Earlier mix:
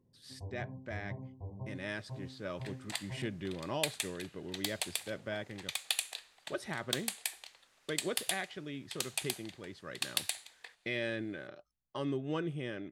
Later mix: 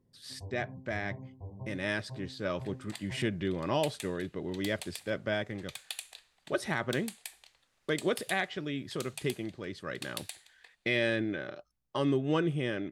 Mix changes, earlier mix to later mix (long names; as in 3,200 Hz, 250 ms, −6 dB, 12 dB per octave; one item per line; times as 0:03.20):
speech +7.0 dB
second sound −7.0 dB